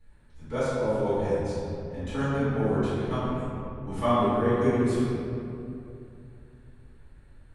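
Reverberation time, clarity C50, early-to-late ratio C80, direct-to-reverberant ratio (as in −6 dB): 2.8 s, −5.0 dB, −2.0 dB, −15.5 dB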